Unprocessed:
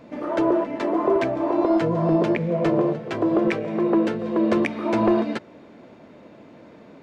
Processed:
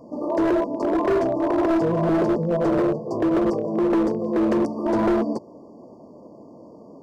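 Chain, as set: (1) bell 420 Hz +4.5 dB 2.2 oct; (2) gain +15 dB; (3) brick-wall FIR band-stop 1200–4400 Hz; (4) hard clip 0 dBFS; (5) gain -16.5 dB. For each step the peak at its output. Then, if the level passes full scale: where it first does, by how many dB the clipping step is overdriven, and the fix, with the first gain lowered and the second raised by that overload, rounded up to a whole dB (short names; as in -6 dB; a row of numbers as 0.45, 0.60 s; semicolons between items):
-6.0, +9.0, +9.5, 0.0, -16.5 dBFS; step 2, 9.5 dB; step 2 +5 dB, step 5 -6.5 dB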